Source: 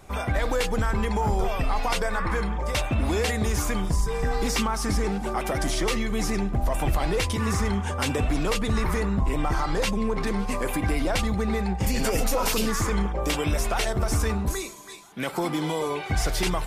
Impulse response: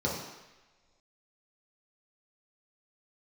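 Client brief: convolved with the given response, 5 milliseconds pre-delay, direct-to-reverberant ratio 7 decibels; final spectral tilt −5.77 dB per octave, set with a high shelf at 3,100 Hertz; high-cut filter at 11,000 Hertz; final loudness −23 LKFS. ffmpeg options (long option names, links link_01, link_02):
-filter_complex "[0:a]lowpass=11000,highshelf=frequency=3100:gain=-4.5,asplit=2[link_01][link_02];[1:a]atrim=start_sample=2205,adelay=5[link_03];[link_02][link_03]afir=irnorm=-1:irlink=0,volume=-16dB[link_04];[link_01][link_04]amix=inputs=2:normalize=0,volume=2dB"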